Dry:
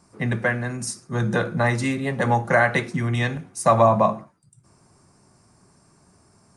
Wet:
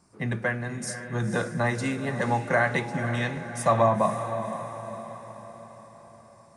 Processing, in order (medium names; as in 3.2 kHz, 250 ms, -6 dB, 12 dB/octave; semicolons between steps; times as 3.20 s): echo that smears into a reverb 509 ms, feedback 51%, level -9.5 dB; trim -5 dB